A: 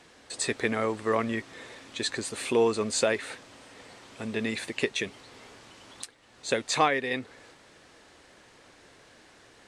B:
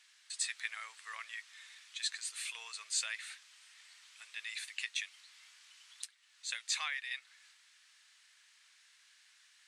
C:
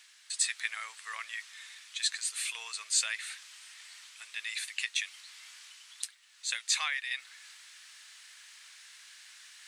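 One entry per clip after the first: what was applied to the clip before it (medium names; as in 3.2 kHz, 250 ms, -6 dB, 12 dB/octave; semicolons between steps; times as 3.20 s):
Bessel high-pass 2.3 kHz, order 4; trim -4 dB
treble shelf 9.8 kHz +6.5 dB; reverse; upward compressor, threshold -50 dBFS; reverse; trim +5 dB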